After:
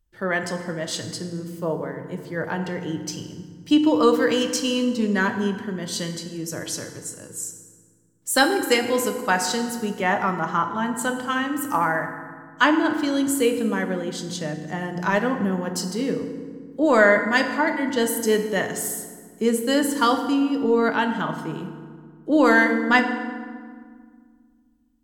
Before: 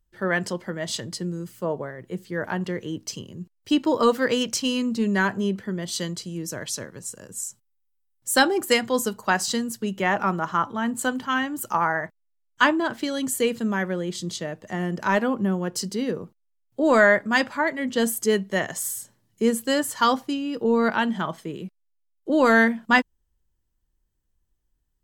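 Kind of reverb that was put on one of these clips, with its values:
feedback delay network reverb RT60 1.8 s, low-frequency decay 1.55×, high-frequency decay 0.6×, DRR 5.5 dB

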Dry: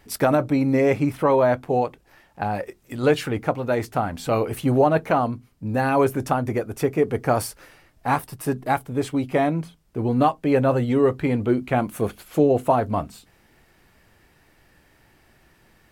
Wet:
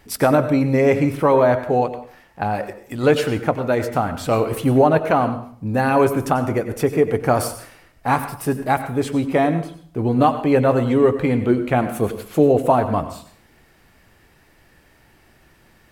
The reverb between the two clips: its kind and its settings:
dense smooth reverb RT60 0.51 s, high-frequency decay 0.8×, pre-delay 80 ms, DRR 10 dB
level +3 dB

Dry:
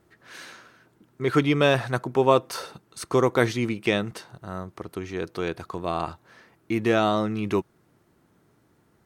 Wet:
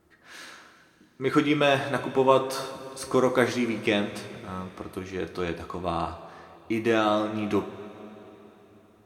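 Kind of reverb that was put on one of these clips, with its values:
coupled-rooms reverb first 0.33 s, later 3.8 s, from −17 dB, DRR 4.5 dB
level −2 dB

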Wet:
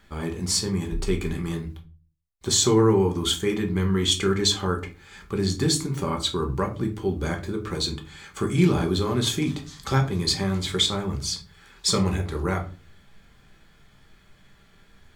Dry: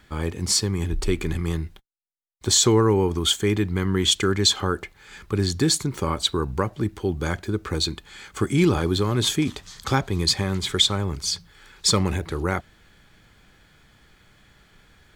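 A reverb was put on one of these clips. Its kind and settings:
rectangular room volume 190 cubic metres, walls furnished, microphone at 1.2 metres
level −4 dB

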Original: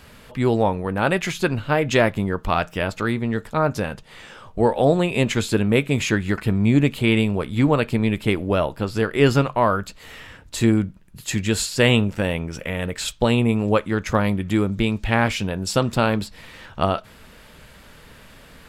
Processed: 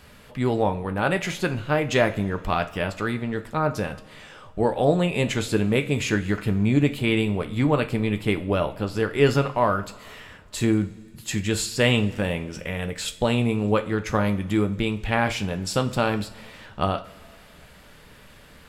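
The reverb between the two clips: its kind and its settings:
coupled-rooms reverb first 0.36 s, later 2.2 s, from −18 dB, DRR 8 dB
level −3.5 dB

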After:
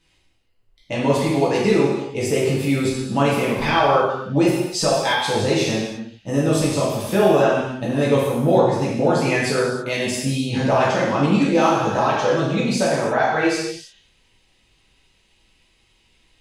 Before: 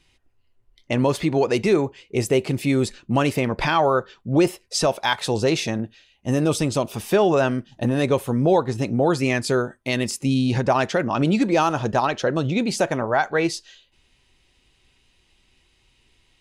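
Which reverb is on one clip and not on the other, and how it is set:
reverb whose tail is shaped and stops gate 360 ms falling, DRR −7.5 dB
level −5.5 dB

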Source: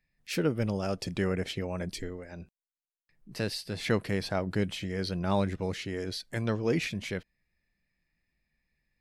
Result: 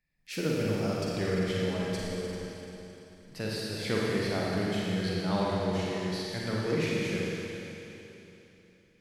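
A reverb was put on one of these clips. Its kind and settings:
four-comb reverb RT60 3.3 s, DRR −5 dB
level −5 dB

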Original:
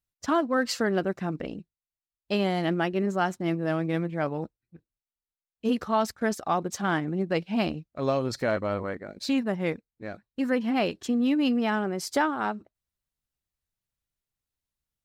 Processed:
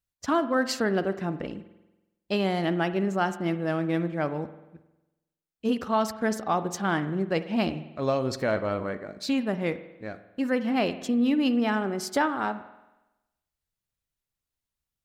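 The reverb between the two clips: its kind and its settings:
spring reverb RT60 1 s, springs 46 ms, chirp 40 ms, DRR 12 dB

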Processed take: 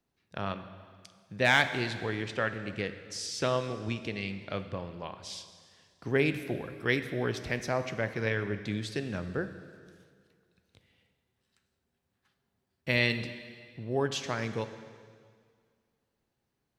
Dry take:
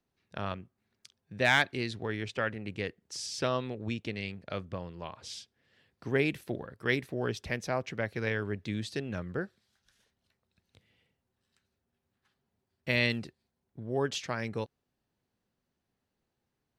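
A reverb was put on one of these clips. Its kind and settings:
dense smooth reverb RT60 2 s, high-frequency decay 0.95×, DRR 9 dB
level +1 dB

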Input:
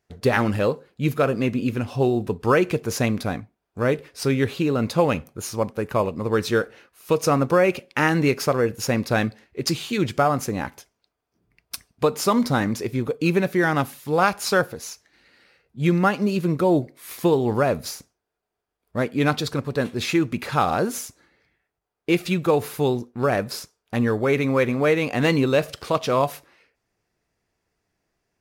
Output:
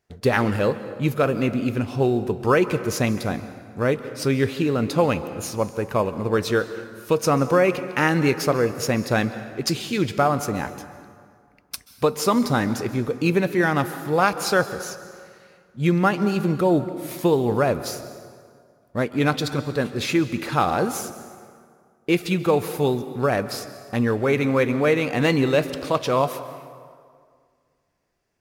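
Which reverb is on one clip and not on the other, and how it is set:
dense smooth reverb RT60 2 s, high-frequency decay 0.65×, pre-delay 120 ms, DRR 12.5 dB

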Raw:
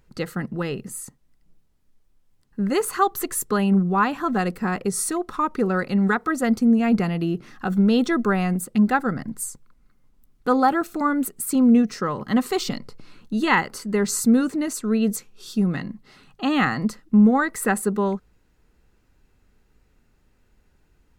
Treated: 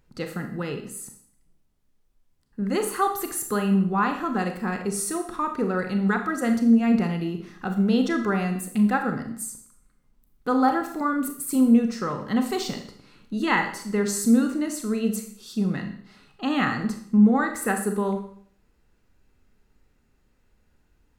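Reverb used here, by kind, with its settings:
four-comb reverb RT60 0.58 s, combs from 27 ms, DRR 5 dB
level −4 dB

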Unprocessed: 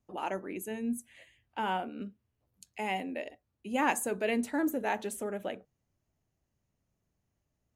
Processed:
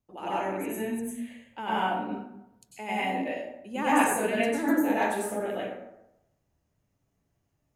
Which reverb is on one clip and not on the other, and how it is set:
dense smooth reverb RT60 0.85 s, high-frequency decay 0.55×, pre-delay 85 ms, DRR −9 dB
level −4 dB

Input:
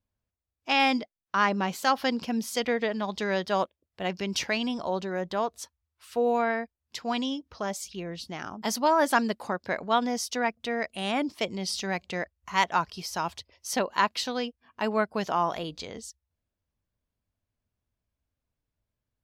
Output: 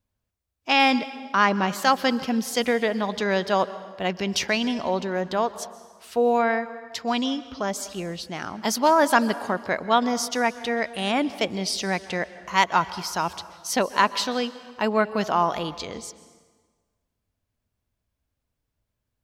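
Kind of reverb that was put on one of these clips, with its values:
dense smooth reverb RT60 1.5 s, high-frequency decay 0.8×, pre-delay 115 ms, DRR 15 dB
level +4.5 dB

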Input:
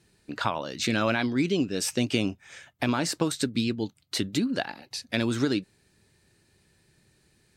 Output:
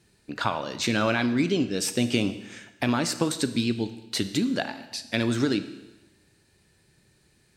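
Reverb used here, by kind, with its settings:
four-comb reverb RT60 1.1 s, combs from 26 ms, DRR 11 dB
level +1 dB

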